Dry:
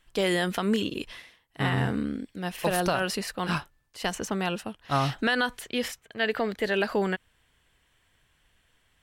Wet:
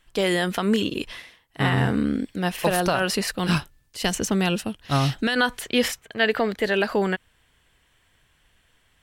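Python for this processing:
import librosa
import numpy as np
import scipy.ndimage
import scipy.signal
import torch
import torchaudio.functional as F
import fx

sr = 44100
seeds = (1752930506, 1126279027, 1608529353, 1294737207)

y = fx.peak_eq(x, sr, hz=1000.0, db=-8.5, octaves=2.3, at=(3.31, 5.36))
y = fx.rider(y, sr, range_db=4, speed_s=0.5)
y = y * librosa.db_to_amplitude(6.0)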